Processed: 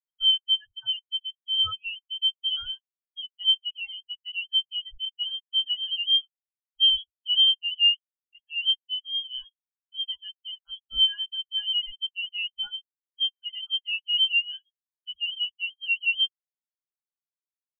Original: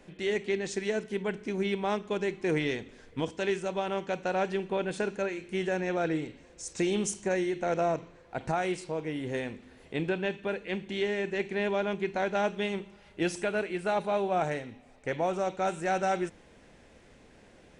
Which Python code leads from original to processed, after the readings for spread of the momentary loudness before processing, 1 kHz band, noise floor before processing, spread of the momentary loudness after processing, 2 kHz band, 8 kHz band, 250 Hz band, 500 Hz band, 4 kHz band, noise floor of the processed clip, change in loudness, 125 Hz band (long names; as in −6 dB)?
8 LU, below −20 dB, −57 dBFS, 16 LU, +3.5 dB, below −35 dB, below −40 dB, below −40 dB, +23.0 dB, below −85 dBFS, +7.0 dB, below −20 dB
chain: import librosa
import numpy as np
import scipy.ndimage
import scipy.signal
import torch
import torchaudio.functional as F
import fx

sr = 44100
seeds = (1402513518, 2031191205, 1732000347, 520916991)

y = fx.dereverb_blind(x, sr, rt60_s=0.65)
y = scipy.signal.sosfilt(scipy.signal.butter(4, 260.0, 'highpass', fs=sr, output='sos'), y)
y = fx.leveller(y, sr, passes=5)
y = fx.freq_invert(y, sr, carrier_hz=3500)
y = fx.tilt_eq(y, sr, slope=-2.0)
y = fx.spectral_expand(y, sr, expansion=4.0)